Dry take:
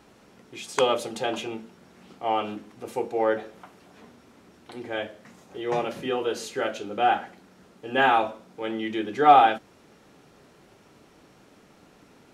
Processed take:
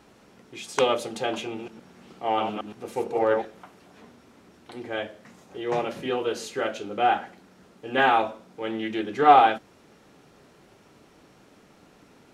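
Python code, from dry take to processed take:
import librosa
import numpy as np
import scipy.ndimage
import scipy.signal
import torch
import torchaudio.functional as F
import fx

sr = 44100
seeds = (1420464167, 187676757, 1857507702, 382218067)

y = fx.reverse_delay(x, sr, ms=116, wet_db=-5.0, at=(1.45, 3.45))
y = fx.doppler_dist(y, sr, depth_ms=0.12)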